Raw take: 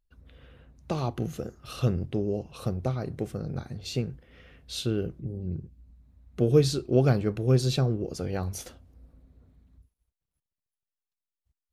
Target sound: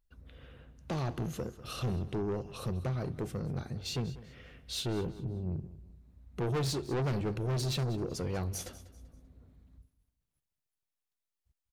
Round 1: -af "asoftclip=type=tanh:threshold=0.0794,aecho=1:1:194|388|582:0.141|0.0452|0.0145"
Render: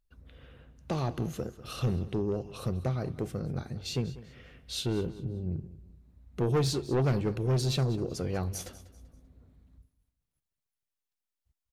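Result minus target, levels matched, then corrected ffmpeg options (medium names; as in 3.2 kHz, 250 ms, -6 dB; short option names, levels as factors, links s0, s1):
saturation: distortion -4 dB
-af "asoftclip=type=tanh:threshold=0.0355,aecho=1:1:194|388|582:0.141|0.0452|0.0145"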